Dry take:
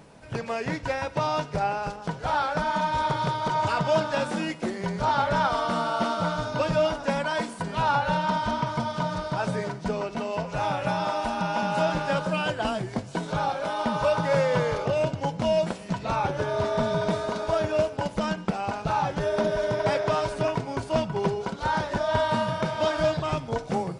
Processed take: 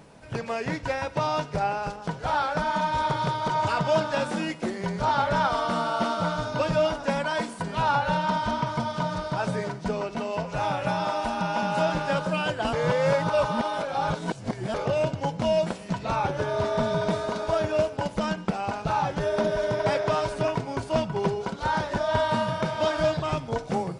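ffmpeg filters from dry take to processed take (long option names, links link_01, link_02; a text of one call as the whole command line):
ffmpeg -i in.wav -filter_complex "[0:a]asplit=3[link_01][link_02][link_03];[link_01]atrim=end=12.732[link_04];[link_02]atrim=start=12.728:end=14.742,asetpts=PTS-STARTPTS,areverse[link_05];[link_03]atrim=start=14.738[link_06];[link_04][link_05]acrossfade=duration=0.004:curve1=hsin:curve2=hsin[link_07];[link_07][link_06]acrossfade=duration=0.004:curve1=hsin:curve2=hsin" out.wav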